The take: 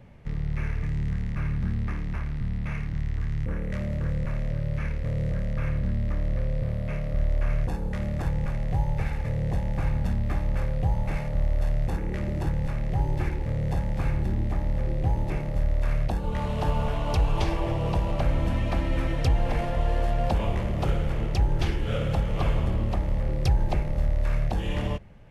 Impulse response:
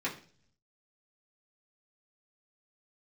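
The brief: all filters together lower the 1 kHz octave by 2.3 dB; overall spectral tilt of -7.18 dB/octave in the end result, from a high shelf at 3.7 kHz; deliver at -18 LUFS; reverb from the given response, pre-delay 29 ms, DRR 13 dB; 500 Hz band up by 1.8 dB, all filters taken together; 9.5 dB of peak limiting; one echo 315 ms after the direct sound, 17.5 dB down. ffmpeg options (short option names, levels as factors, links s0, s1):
-filter_complex "[0:a]equalizer=f=500:t=o:g=3.5,equalizer=f=1000:t=o:g=-5,highshelf=f=3700:g=4,alimiter=limit=0.0891:level=0:latency=1,aecho=1:1:315:0.133,asplit=2[s0][s1];[1:a]atrim=start_sample=2205,adelay=29[s2];[s1][s2]afir=irnorm=-1:irlink=0,volume=0.119[s3];[s0][s3]amix=inputs=2:normalize=0,volume=4.47"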